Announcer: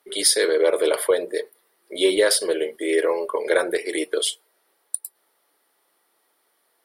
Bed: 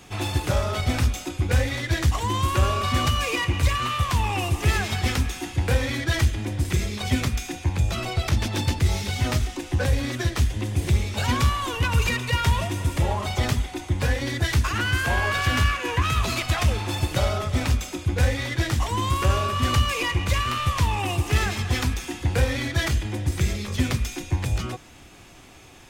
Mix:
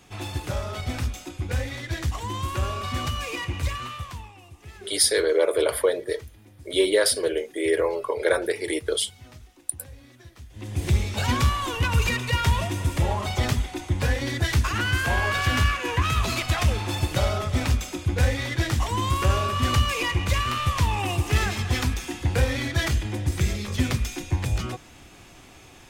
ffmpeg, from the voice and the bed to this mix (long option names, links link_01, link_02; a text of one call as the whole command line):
ffmpeg -i stem1.wav -i stem2.wav -filter_complex "[0:a]adelay=4750,volume=-2dB[link_01];[1:a]volume=16.5dB,afade=type=out:start_time=3.67:duration=0.66:silence=0.141254,afade=type=in:start_time=10.5:duration=0.4:silence=0.0749894[link_02];[link_01][link_02]amix=inputs=2:normalize=0" out.wav